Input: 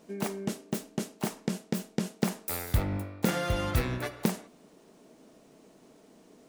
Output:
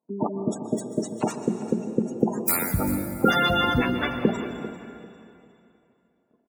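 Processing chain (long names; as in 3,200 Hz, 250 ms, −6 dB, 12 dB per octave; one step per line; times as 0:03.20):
spectral magnitudes quantised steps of 30 dB
high-pass filter 51 Hz 6 dB per octave
notch filter 5,200 Hz, Q 11
gate on every frequency bin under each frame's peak −25 dB strong
noise gate −53 dBFS, range −34 dB
spectral tilt +1.5 dB per octave
hollow resonant body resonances 240/960/1,400/3,500 Hz, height 8 dB
on a send: repeating echo 395 ms, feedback 29%, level −15.5 dB
on the sum: dense smooth reverb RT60 2.6 s, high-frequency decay 0.95×, pre-delay 110 ms, DRR 8.5 dB
level +7 dB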